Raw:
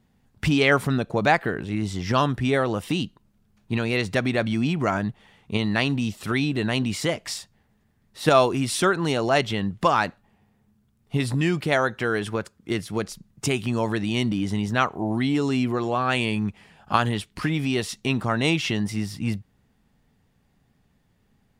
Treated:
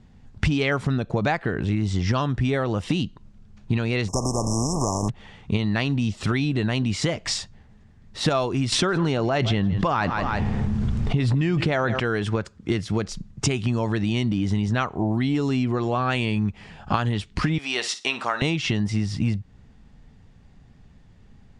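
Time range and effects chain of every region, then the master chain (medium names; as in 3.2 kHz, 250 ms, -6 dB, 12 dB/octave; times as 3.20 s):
4.07–5.08 s: spectral contrast reduction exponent 0.35 + brick-wall FIR band-stop 1.2–5.1 kHz
8.72–12.00 s: treble shelf 5 kHz -9 dB + feedback delay 164 ms, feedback 28%, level -22 dB + level flattener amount 70%
17.58–18.42 s: high-pass 710 Hz + flutter echo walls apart 9.5 m, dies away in 0.25 s
whole clip: low-pass 7.6 kHz 24 dB/octave; bass shelf 110 Hz +12 dB; compression 5:1, threshold -28 dBFS; trim +7.5 dB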